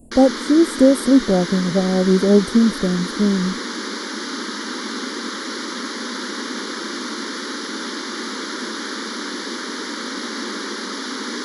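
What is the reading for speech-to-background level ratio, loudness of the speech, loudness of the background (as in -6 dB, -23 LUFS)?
9.5 dB, -17.0 LUFS, -26.5 LUFS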